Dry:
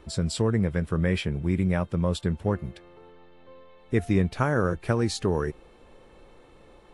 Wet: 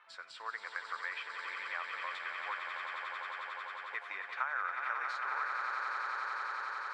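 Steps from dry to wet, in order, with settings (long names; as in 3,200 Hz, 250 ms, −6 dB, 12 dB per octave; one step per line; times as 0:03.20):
high-pass filter 1,200 Hz 24 dB per octave
echo that builds up and dies away 90 ms, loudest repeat 8, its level −9.5 dB
floating-point word with a short mantissa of 4 bits
downward compressor 3 to 1, threshold −36 dBFS, peak gain reduction 8 dB
low-pass filter 1,600 Hz 12 dB per octave
level +5 dB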